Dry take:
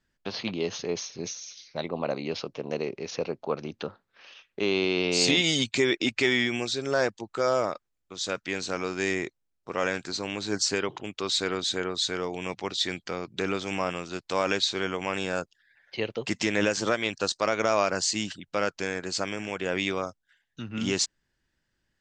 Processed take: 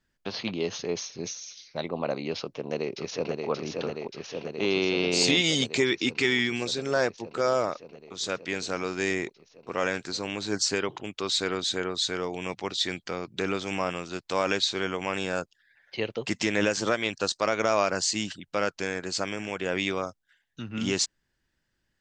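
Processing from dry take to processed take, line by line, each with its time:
2.38–3.49 echo throw 0.58 s, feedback 80%, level -3.5 dB
5.83–6.62 bell 610 Hz -12 dB 0.48 oct

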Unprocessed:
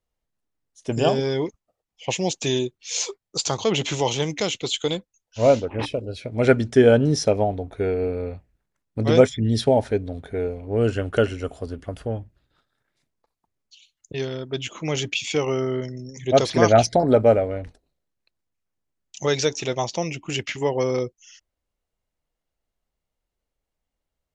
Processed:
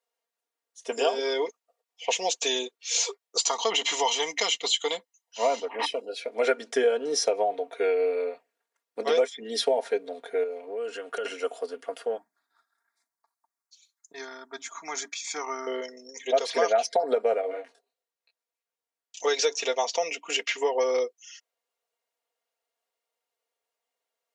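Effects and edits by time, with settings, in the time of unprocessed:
3.4–6.09 comb 1 ms, depth 50%
7.54–8.24 bell 2600 Hz +5 dB 1.1 oct
10.43–11.25 compressor, threshold -28 dBFS
12.17–15.67 fixed phaser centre 1200 Hz, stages 4
17.41–19.24 detuned doubles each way 29 cents
whole clip: HPF 430 Hz 24 dB/oct; comb 4.3 ms, depth 74%; compressor 4:1, threshold -21 dBFS

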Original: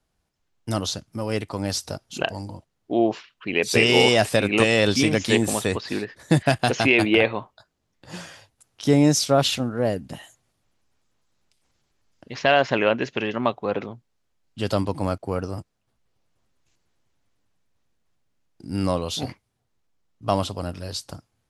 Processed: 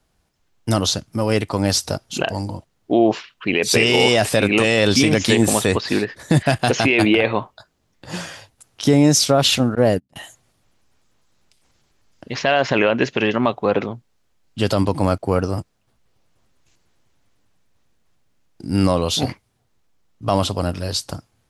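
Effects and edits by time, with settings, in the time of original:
9.75–10.16 gate -30 dBFS, range -36 dB
whole clip: limiter -12.5 dBFS; gain +8 dB

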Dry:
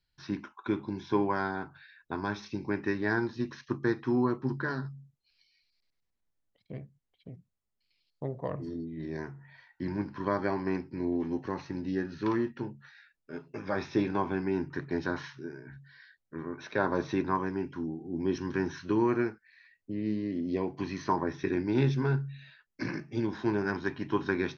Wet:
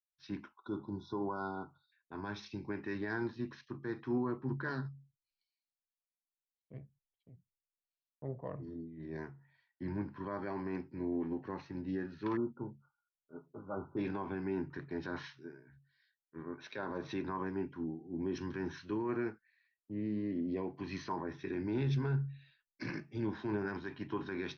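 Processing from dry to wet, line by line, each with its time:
0.58–1.92 spectral delete 1500–3400 Hz
12.37–13.97 brick-wall FIR low-pass 1500 Hz
whole clip: LPF 4200 Hz 12 dB/oct; limiter -25 dBFS; three-band expander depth 100%; gain -3.5 dB

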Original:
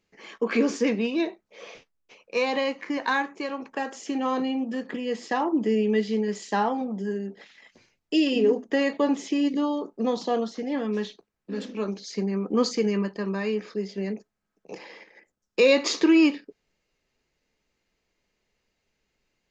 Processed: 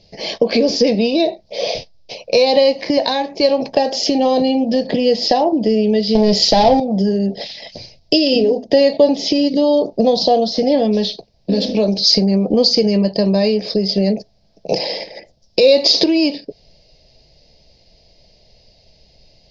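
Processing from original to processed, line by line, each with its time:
6.15–6.8 sample leveller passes 3
whole clip: compressor 4:1, threshold -34 dBFS; EQ curve 140 Hz 0 dB, 230 Hz -10 dB, 400 Hz -11 dB, 640 Hz +2 dB, 1300 Hz -29 dB, 1900 Hz -18 dB, 2900 Hz -10 dB, 5000 Hz +5 dB, 7700 Hz -27 dB; maximiser +29.5 dB; gain -1 dB

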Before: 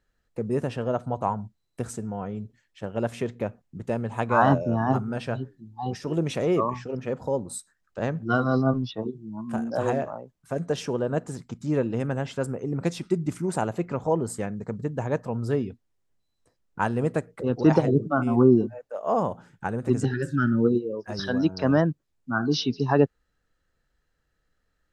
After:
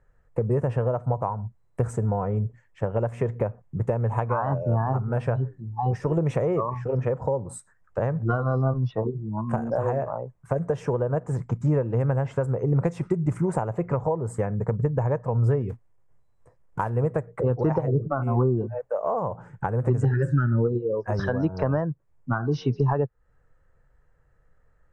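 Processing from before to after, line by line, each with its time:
15.69–16.9 short-mantissa float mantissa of 2-bit
whole clip: graphic EQ 125/250/500/1000/2000/4000/8000 Hz +9/-6/+9/+11/+8/-8/+10 dB; compressor 6:1, threshold -23 dBFS; tilt -3 dB/oct; gain -2.5 dB

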